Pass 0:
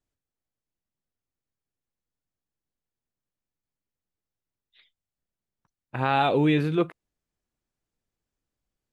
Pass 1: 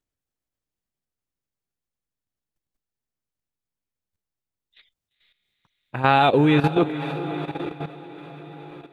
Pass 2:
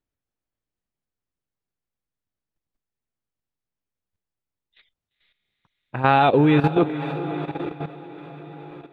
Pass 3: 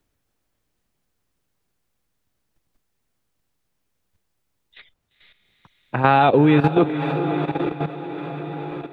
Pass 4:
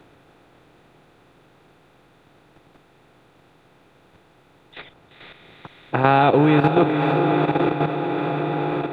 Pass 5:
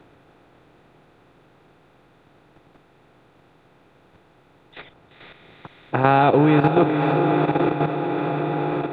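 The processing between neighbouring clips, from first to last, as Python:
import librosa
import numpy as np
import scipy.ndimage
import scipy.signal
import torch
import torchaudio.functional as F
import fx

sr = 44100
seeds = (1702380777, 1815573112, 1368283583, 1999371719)

y1 = fx.echo_diffused(x, sr, ms=473, feedback_pct=58, wet_db=-9.0)
y1 = fx.level_steps(y1, sr, step_db=12)
y1 = y1 * librosa.db_to_amplitude(8.0)
y2 = fx.high_shelf(y1, sr, hz=4100.0, db=-11.0)
y2 = y2 * librosa.db_to_amplitude(1.0)
y3 = fx.band_squash(y2, sr, depth_pct=40)
y3 = y3 * librosa.db_to_amplitude(2.0)
y4 = fx.bin_compress(y3, sr, power=0.6)
y4 = y4 * librosa.db_to_amplitude(-2.5)
y5 = fx.high_shelf(y4, sr, hz=3700.0, db=-6.5)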